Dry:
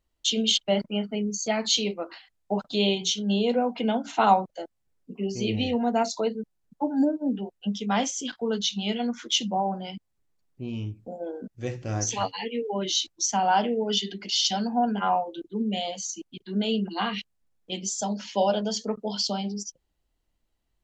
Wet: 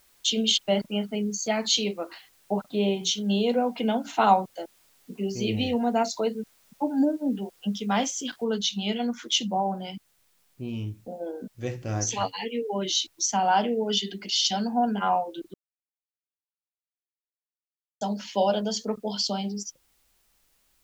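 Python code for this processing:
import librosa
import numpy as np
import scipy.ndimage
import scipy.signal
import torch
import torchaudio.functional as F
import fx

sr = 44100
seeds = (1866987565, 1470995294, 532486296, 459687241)

y = fx.lowpass(x, sr, hz=1900.0, slope=12, at=(2.58, 3.03))
y = fx.noise_floor_step(y, sr, seeds[0], at_s=8.44, before_db=-62, after_db=-68, tilt_db=0.0)
y = fx.edit(y, sr, fx.silence(start_s=15.54, length_s=2.47), tone=tone)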